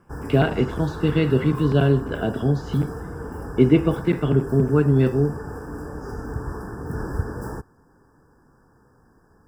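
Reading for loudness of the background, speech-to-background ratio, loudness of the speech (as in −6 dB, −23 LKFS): −33.0 LKFS, 12.0 dB, −21.0 LKFS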